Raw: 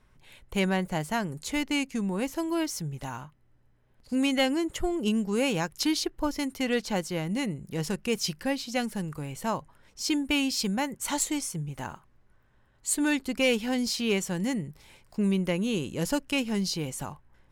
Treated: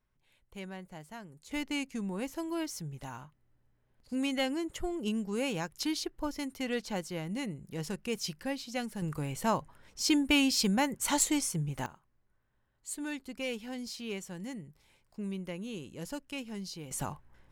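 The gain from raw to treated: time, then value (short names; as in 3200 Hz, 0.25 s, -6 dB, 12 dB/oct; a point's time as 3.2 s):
-17 dB
from 1.51 s -6.5 dB
from 9.02 s +0.5 dB
from 11.86 s -12 dB
from 16.91 s 0 dB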